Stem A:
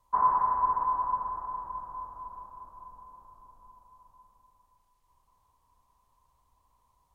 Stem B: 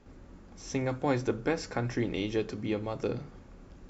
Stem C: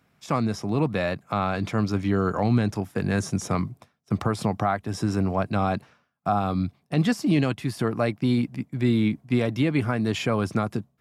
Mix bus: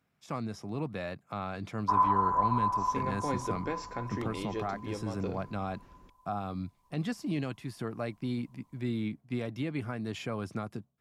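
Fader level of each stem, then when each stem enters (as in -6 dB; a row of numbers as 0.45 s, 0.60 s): -1.0 dB, -6.5 dB, -11.5 dB; 1.75 s, 2.20 s, 0.00 s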